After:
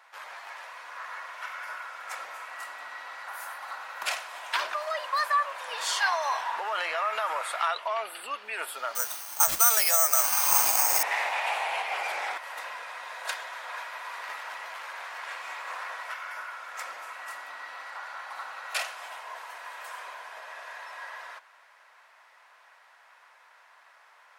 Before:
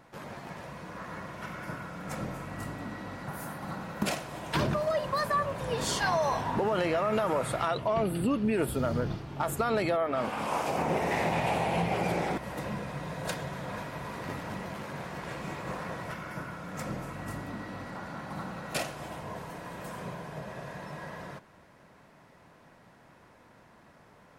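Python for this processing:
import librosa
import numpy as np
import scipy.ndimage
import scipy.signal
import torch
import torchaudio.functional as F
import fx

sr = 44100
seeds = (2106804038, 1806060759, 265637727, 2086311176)

y = scipy.signal.sosfilt(scipy.signal.bessel(4, 1300.0, 'highpass', norm='mag', fs=sr, output='sos'), x)
y = fx.high_shelf(y, sr, hz=3800.0, db=-8.5)
y = fx.resample_bad(y, sr, factor=6, down='none', up='zero_stuff', at=(8.95, 11.03))
y = y * librosa.db_to_amplitude(8.5)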